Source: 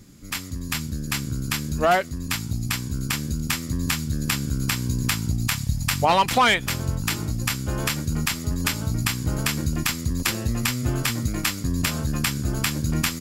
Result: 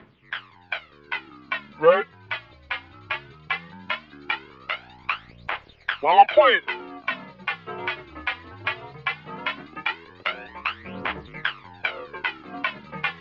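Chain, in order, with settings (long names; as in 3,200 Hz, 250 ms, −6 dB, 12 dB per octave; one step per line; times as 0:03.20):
reversed playback
upward compression, threshold −29 dBFS
reversed playback
phase shifter 0.18 Hz, delay 4.4 ms, feedback 69%
single-sideband voice off tune −160 Hz 450–3,200 Hz
level −1 dB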